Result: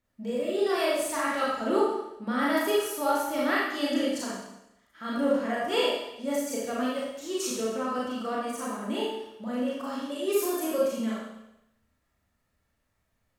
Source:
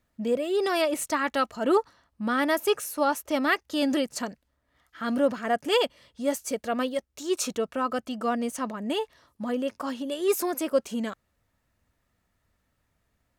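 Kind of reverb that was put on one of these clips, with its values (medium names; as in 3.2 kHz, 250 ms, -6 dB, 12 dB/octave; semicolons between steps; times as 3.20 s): Schroeder reverb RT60 0.88 s, combs from 28 ms, DRR -6.5 dB; trim -8.5 dB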